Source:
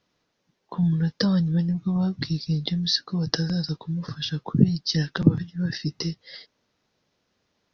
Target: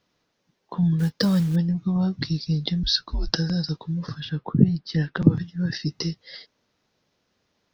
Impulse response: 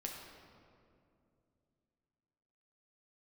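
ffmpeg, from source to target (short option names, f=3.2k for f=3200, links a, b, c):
-filter_complex "[0:a]asettb=1/sr,asplit=3[a][b][c];[a]atrim=end=0.994[d];[b]atrim=start=0.99:end=1.56,asetpts=PTS-STARTPTS,afade=t=in:d=0.004:c=qsin,afade=t=out:st=0.566:d=0.004:c=qsin,acrusher=bits=6:mode=log:mix=0:aa=0.000001[e];[c]atrim=start=1.556[f];[d][e]acrossfade=d=0.004:c1=hsin:c2=qsin[g];[g][f]acrossfade=d=0.004:c1=qsin:c2=hsin,asettb=1/sr,asplit=3[h][i][j];[h]atrim=end=2.834[k];[i]atrim=start=2.83:end=3.35,asetpts=PTS-STARTPTS,afade=t=in:d=0.004:c=qsin,afade=t=out:st=0.516:d=0.004:c=qsin,afreqshift=-130[l];[j]atrim=start=3.346[m];[k][l]acrossfade=d=0.004:c1=hsin:c2=qsin[n];[n][m]acrossfade=d=0.004:c1=qsin:c2=hsin,asettb=1/sr,asplit=3[o][p][q];[o]atrim=end=4.204[r];[p]atrim=start=4.2:end=5.22,asetpts=PTS-STARTPTS,afade=t=in:d=0.004:c=qsin,afade=t=out:st=1.016:d=0.004:c=qsin,lowpass=2.5k[s];[q]atrim=start=5.216[t];[r][s]acrossfade=d=0.004:c1=hsin:c2=qsin[u];[u][t]acrossfade=d=0.004:c1=qsin:c2=hsin,volume=1dB"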